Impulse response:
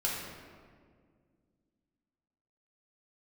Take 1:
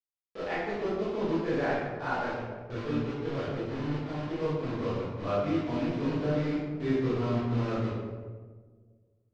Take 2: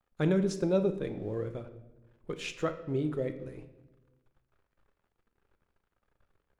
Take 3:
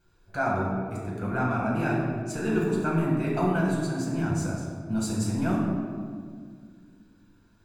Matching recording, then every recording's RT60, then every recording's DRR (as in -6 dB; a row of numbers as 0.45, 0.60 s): 3; 1.5 s, not exponential, 1.9 s; -11.5, 8.0, -5.0 dB